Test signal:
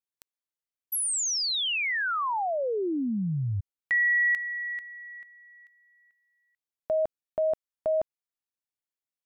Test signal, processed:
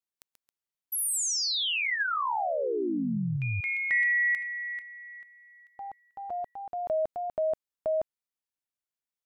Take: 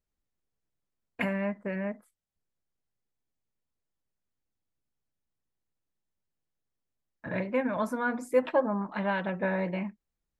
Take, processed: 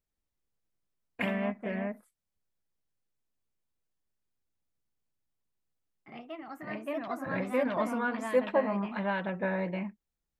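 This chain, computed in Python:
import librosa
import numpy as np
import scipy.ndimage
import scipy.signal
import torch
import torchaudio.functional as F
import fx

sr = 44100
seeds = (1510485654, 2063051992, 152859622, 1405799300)

y = fx.echo_pitch(x, sr, ms=158, semitones=2, count=2, db_per_echo=-6.0)
y = y * 10.0 ** (-2.0 / 20.0)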